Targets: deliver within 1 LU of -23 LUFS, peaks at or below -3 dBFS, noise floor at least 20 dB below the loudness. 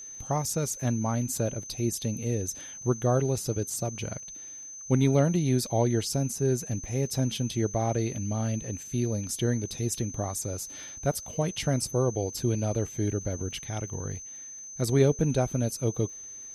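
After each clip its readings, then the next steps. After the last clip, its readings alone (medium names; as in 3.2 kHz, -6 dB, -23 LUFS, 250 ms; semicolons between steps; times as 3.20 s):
tick rate 29 per s; steady tone 6.2 kHz; tone level -40 dBFS; loudness -29.0 LUFS; peak level -10.0 dBFS; loudness target -23.0 LUFS
-> de-click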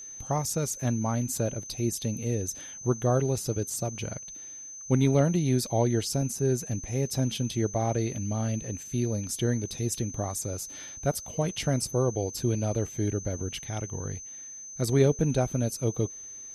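tick rate 0 per s; steady tone 6.2 kHz; tone level -40 dBFS
-> band-stop 6.2 kHz, Q 30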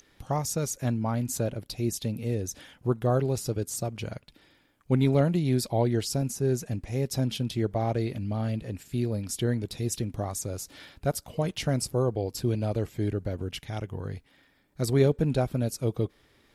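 steady tone not found; loudness -29.0 LUFS; peak level -10.0 dBFS; loudness target -23.0 LUFS
-> trim +6 dB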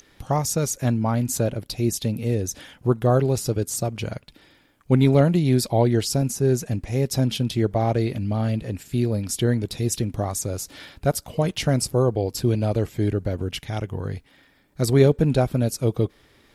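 loudness -23.0 LUFS; peak level -4.0 dBFS; noise floor -58 dBFS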